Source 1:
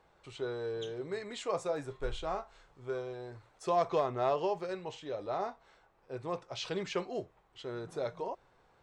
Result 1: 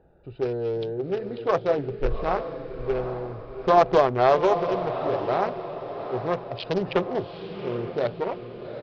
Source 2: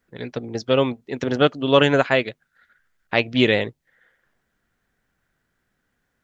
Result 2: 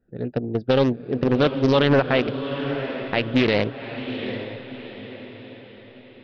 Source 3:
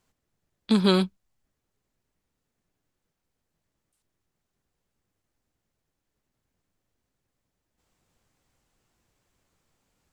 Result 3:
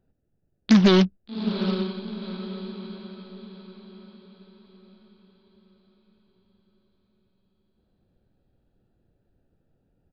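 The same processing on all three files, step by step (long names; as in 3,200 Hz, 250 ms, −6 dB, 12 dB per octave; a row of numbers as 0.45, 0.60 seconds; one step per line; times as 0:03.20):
adaptive Wiener filter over 41 samples
in parallel at −9.5 dB: wave folding −19 dBFS
on the sum: brickwall limiter −10.5 dBFS
downsampling to 11,025 Hz
on a send: feedback delay with all-pass diffusion 789 ms, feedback 45%, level −9 dB
on the sum: highs frequency-modulated by the lows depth 0.4 ms
normalise the peak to −6 dBFS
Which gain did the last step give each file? +10.0, +3.0, +5.0 decibels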